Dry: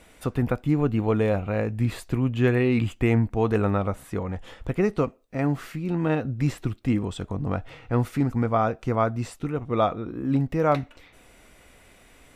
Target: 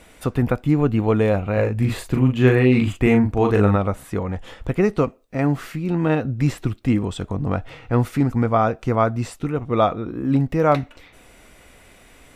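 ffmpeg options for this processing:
-filter_complex "[0:a]asettb=1/sr,asplit=3[a][b][c];[a]atrim=end=1.534[d];[b]atrim=start=1.53:end=3.76,asetpts=PTS-STARTPTS,afade=t=in:d=0.004:c=qsin,afade=t=out:st=2.226:d=0.004:c=qsin,asplit=2[e][f];[f]adelay=39,volume=-4.5dB[g];[e][g]amix=inputs=2:normalize=0,atrim=end_sample=98343[h];[c]atrim=start=3.756[i];[d][h]acrossfade=d=0.004:c1=hsin:c2=qsin[j];[j][i]acrossfade=d=0.004:c1=qsin:c2=hsin,volume=4.5dB"

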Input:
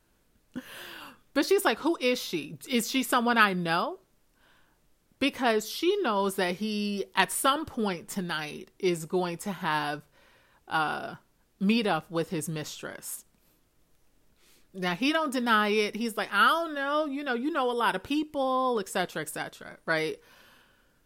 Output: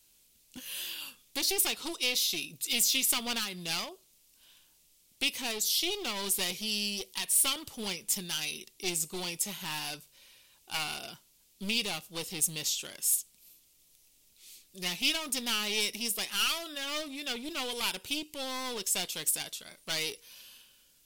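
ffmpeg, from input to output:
-af "alimiter=limit=-15.5dB:level=0:latency=1:release=366,aeval=exprs='clip(val(0),-1,0.0251)':c=same,aexciter=amount=4:drive=9:freq=2.3k,volume=-9dB"

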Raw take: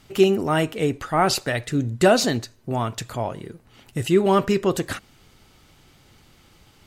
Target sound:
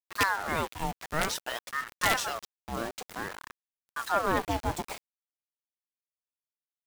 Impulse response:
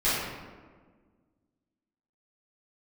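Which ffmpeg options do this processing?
-filter_complex "[0:a]asettb=1/sr,asplit=3[a][b][c];[a]atrim=end=0.744[d];[b]atrim=start=0.74:end=2.77,asetpts=PTS-STARTPTS,afade=t=in:d=0.004:c=qsin,afade=t=out:st=2.026:d=0.004:c=qsin,highpass=f=190:w=0.5412,highpass=f=190:w=1.3066[e];[c]atrim=start=2.766[f];[d][e]acrossfade=d=0.004:c1=hsin:c2=qsin[g];[g][f]acrossfade=d=0.004:c1=qsin:c2=hsin,aeval=exprs='(mod(2.24*val(0)+1,2)-1)/2.24':c=same,aeval=exprs='0.447*(cos(1*acos(clip(val(0)/0.447,-1,1)))-cos(1*PI/2))+0.1*(cos(4*acos(clip(val(0)/0.447,-1,1)))-cos(4*PI/2))+0.0141*(cos(5*acos(clip(val(0)/0.447,-1,1)))-cos(5*PI/2))+0.02*(cos(6*acos(clip(val(0)/0.447,-1,1)))-cos(6*PI/2))':c=same,acrusher=bits=4:mix=0:aa=0.000001,aeval=exprs='val(0)*sin(2*PI*1000*n/s+1000*0.55/0.54*sin(2*PI*0.54*n/s))':c=same,volume=-8.5dB"

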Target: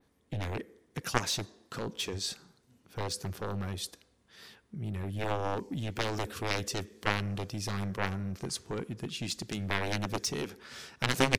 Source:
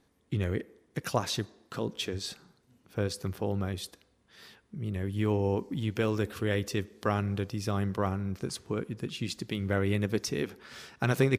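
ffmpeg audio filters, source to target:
-af "aeval=exprs='0.299*(cos(1*acos(clip(val(0)/0.299,-1,1)))-cos(1*PI/2))+0.0944*(cos(3*acos(clip(val(0)/0.299,-1,1)))-cos(3*PI/2))+0.0237*(cos(7*acos(clip(val(0)/0.299,-1,1)))-cos(7*PI/2))':c=same,adynamicequalizer=threshold=0.00158:dfrequency=6800:dqfactor=0.73:tfrequency=6800:tqfactor=0.73:attack=5:release=100:ratio=0.375:range=3:mode=boostabove:tftype=bell,volume=5.5dB"

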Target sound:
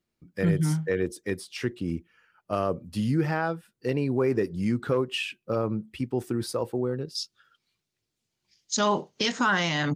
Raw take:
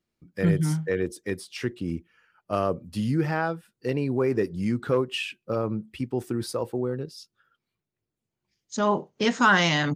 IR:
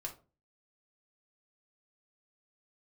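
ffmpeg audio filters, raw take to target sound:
-filter_complex "[0:a]asettb=1/sr,asplit=3[a][b][c];[a]atrim=end=7.154[d];[b]atrim=start=7.15:end=9.32,asetpts=PTS-STARTPTS,afade=t=in:d=0.004:c=qsin,afade=t=out:st=2.166:d=0.004:c=qsin,equalizer=f=4.8k:t=o:w=2.3:g=13[e];[c]atrim=start=9.316[f];[d][e]acrossfade=d=0.004:c1=hsin:c2=qsin[g];[g][f]acrossfade=d=0.004:c1=qsin:c2=hsin,alimiter=limit=-14.5dB:level=0:latency=1:release=102"

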